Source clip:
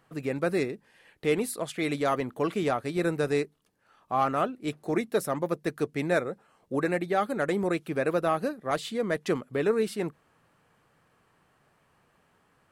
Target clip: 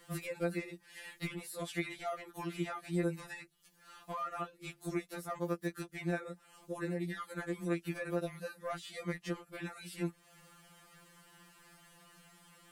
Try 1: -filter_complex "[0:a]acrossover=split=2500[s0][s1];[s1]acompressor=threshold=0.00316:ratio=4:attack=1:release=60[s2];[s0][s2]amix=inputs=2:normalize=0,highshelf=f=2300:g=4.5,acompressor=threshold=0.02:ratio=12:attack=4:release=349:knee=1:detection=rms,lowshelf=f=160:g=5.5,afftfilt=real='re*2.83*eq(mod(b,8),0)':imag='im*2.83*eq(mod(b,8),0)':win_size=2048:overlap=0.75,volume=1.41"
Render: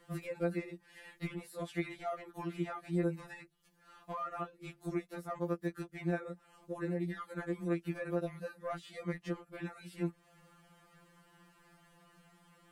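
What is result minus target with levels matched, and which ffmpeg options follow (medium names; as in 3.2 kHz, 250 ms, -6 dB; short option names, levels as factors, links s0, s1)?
4 kHz band -6.5 dB
-filter_complex "[0:a]acrossover=split=2500[s0][s1];[s1]acompressor=threshold=0.00316:ratio=4:attack=1:release=60[s2];[s0][s2]amix=inputs=2:normalize=0,highshelf=f=2300:g=15,acompressor=threshold=0.02:ratio=12:attack=4:release=349:knee=1:detection=rms,lowshelf=f=160:g=5.5,afftfilt=real='re*2.83*eq(mod(b,8),0)':imag='im*2.83*eq(mod(b,8),0)':win_size=2048:overlap=0.75,volume=1.41"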